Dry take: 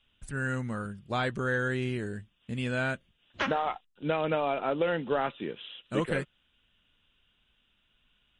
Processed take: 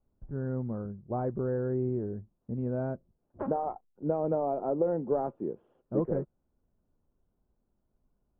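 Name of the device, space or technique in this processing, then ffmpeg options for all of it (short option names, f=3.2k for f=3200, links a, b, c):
under water: -af "lowpass=f=820:w=0.5412,lowpass=f=820:w=1.3066,equalizer=f=370:t=o:w=0.31:g=4"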